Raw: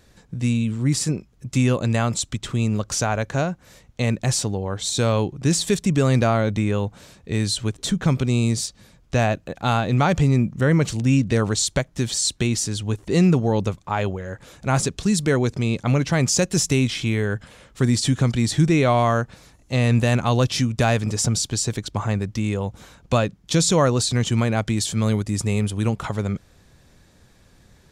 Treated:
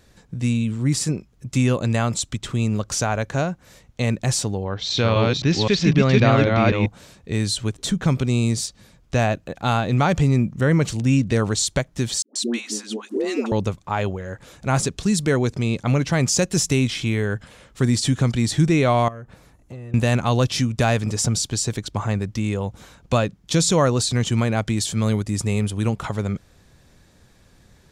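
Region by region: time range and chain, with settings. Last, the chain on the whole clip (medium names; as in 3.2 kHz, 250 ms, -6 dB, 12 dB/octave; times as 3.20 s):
4.64–6.86 s: chunks repeated in reverse 260 ms, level -0.5 dB + steep low-pass 5.5 kHz + dynamic bell 2.4 kHz, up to +5 dB, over -39 dBFS, Q 1.2
12.22–13.52 s: Chebyshev high-pass 210 Hz, order 10 + treble shelf 4.9 kHz -5 dB + phase dispersion highs, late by 136 ms, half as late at 590 Hz
19.08–19.94 s: peaking EQ 5.2 kHz -9 dB 2.2 oct + compression 12:1, threshold -29 dBFS + transformer saturation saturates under 370 Hz
whole clip: none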